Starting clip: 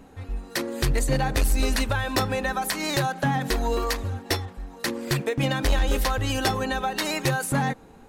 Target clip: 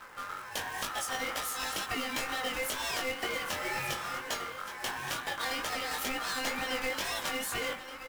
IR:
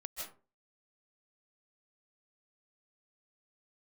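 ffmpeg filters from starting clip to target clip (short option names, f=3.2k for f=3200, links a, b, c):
-filter_complex "[0:a]acrossover=split=380[a][b];[a]acompressor=threshold=-31dB:ratio=6[c];[c][b]amix=inputs=2:normalize=0,bandreject=f=85.87:t=h:w=4,bandreject=f=171.74:t=h:w=4,bandreject=f=257.61:t=h:w=4,bandreject=f=343.48:t=h:w=4,bandreject=f=429.35:t=h:w=4,bandreject=f=515.22:t=h:w=4,bandreject=f=601.09:t=h:w=4,bandreject=f=686.96:t=h:w=4,bandreject=f=772.83:t=h:w=4,bandreject=f=858.7:t=h:w=4,bandreject=f=944.57:t=h:w=4,bandreject=f=1.03044k:t=h:w=4,bandreject=f=1.11631k:t=h:w=4,bandreject=f=1.20218k:t=h:w=4,bandreject=f=1.28805k:t=h:w=4,bandreject=f=1.37392k:t=h:w=4,bandreject=f=1.45979k:t=h:w=4,bandreject=f=1.54566k:t=h:w=4,bandreject=f=1.63153k:t=h:w=4,bandreject=f=1.7174k:t=h:w=4,bandreject=f=1.80327k:t=h:w=4,bandreject=f=1.88914k:t=h:w=4,bandreject=f=1.97501k:t=h:w=4,bandreject=f=2.06088k:t=h:w=4,bandreject=f=2.14675k:t=h:w=4,bandreject=f=2.23262k:t=h:w=4,bandreject=f=2.31849k:t=h:w=4,bandreject=f=2.40436k:t=h:w=4,bandreject=f=2.49023k:t=h:w=4,bandreject=f=2.5761k:t=h:w=4,bandreject=f=2.66197k:t=h:w=4,bandreject=f=2.74784k:t=h:w=4,bandreject=f=2.83371k:t=h:w=4,bandreject=f=2.91958k:t=h:w=4,bandreject=f=3.00545k:t=h:w=4,acrossover=split=110|620[d][e][f];[d]acompressor=threshold=-43dB:ratio=4[g];[e]acompressor=threshold=-40dB:ratio=4[h];[f]acompressor=threshold=-31dB:ratio=4[i];[g][h][i]amix=inputs=3:normalize=0,asoftclip=type=tanh:threshold=-26.5dB,acrusher=bits=2:mode=log:mix=0:aa=0.000001,aecho=1:1:1174:0.282,aeval=exprs='val(0)*sin(2*PI*1300*n/s)':c=same,flanger=delay=17.5:depth=6:speed=2.1,volume=5.5dB"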